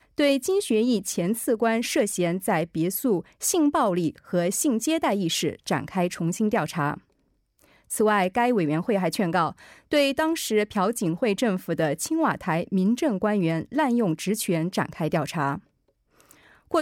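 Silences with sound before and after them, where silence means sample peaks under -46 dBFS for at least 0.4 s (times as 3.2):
6.99–7.59
15.6–16.2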